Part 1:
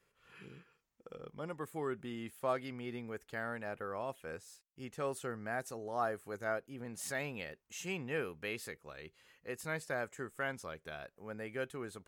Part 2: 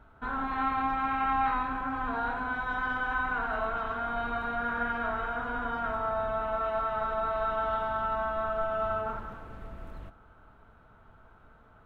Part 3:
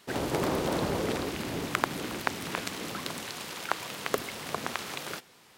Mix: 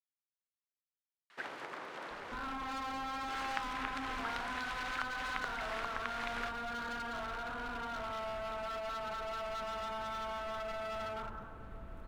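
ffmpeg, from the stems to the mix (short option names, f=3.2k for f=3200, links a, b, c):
-filter_complex "[1:a]asoftclip=type=hard:threshold=-33dB,adelay=2100,volume=-5dB[a];[2:a]acompressor=threshold=-34dB:ratio=10,bandpass=f=1.6k:t=q:w=1.4:csg=0,adelay=1300,volume=2dB,asplit=3[b][c][d];[b]atrim=end=2.35,asetpts=PTS-STARTPTS,afade=t=out:st=2.346:d=0.004:c=hsin[e];[c]atrim=start=2.35:end=3.28,asetpts=PTS-STARTPTS,volume=0[f];[d]atrim=start=3.28,asetpts=PTS-STARTPTS,afade=t=in:d=0.004:c=hsin[g];[e][f][g]concat=n=3:v=0:a=1[h];[a][h]amix=inputs=2:normalize=0"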